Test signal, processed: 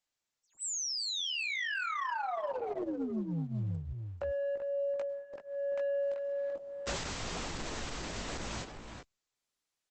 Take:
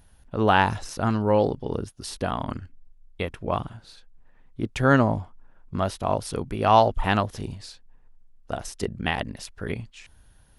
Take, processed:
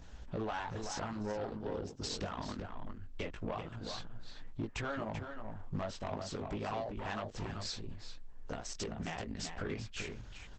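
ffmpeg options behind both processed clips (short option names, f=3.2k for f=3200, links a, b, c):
-filter_complex "[0:a]equalizer=f=110:w=1.7:g=-4.5,acrossover=split=460|1000[a][b][c];[a]alimiter=limit=-23dB:level=0:latency=1:release=24[d];[d][b][c]amix=inputs=3:normalize=0,acompressor=threshold=-39dB:ratio=8,asplit=2[e][f];[f]aeval=exprs='0.0596*sin(PI/2*2.24*val(0)/0.0596)':c=same,volume=-11dB[g];[e][g]amix=inputs=2:normalize=0,flanger=delay=17.5:depth=2.4:speed=0.24,asoftclip=type=tanh:threshold=-33.5dB,asplit=2[h][i];[i]adelay=384.8,volume=-6dB,highshelf=f=4k:g=-8.66[j];[h][j]amix=inputs=2:normalize=0,volume=3.5dB" -ar 48000 -c:a libopus -b:a 12k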